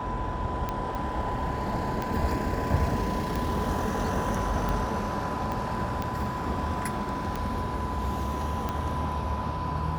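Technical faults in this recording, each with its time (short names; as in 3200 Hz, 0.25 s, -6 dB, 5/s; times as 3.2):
tick 45 rpm -16 dBFS
tone 1000 Hz -34 dBFS
0.95 pop
5.52 pop -19 dBFS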